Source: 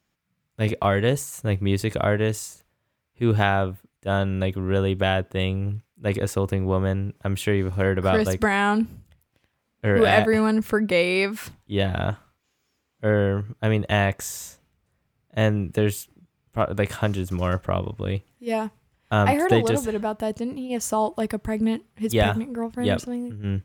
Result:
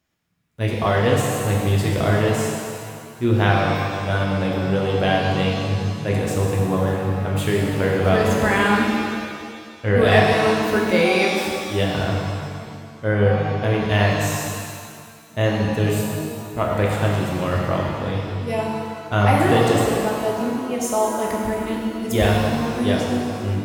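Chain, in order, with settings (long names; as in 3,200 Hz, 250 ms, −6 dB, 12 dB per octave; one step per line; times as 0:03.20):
reverb with rising layers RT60 2 s, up +7 semitones, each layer −8 dB, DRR −2 dB
level −1 dB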